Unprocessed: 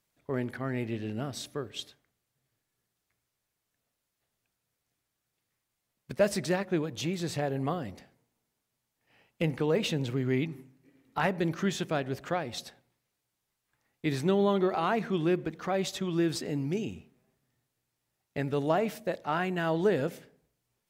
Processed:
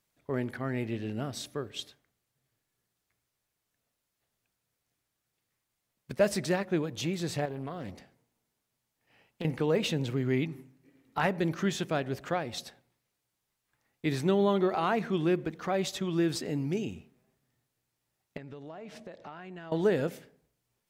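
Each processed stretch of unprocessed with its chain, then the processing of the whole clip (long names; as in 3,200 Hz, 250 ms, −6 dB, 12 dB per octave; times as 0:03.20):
0:07.45–0:09.45: downward compressor 5 to 1, threshold −33 dBFS + highs frequency-modulated by the lows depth 0.25 ms
0:18.37–0:19.72: low-pass filter 5,800 Hz + downward compressor 8 to 1, threshold −41 dBFS
whole clip: no processing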